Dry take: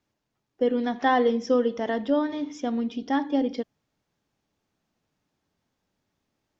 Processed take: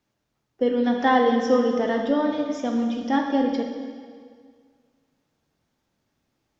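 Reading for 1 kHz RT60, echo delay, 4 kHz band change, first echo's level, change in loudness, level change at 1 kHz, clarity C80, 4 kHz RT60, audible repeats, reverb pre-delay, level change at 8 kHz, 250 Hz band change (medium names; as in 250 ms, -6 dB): 1.9 s, no echo, +3.5 dB, no echo, +3.0 dB, +3.5 dB, 6.0 dB, 1.8 s, no echo, 5 ms, no reading, +3.5 dB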